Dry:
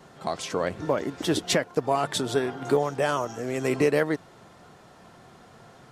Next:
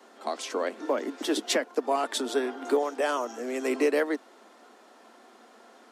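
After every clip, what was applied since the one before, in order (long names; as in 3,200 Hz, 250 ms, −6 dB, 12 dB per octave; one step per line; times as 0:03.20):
Butterworth high-pass 220 Hz 96 dB per octave
level −2 dB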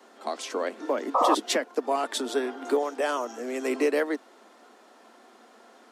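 sound drawn into the spectrogram noise, 0:01.14–0:01.35, 470–1,300 Hz −21 dBFS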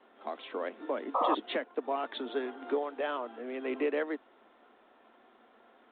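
level −6.5 dB
G.726 40 kbit/s 8,000 Hz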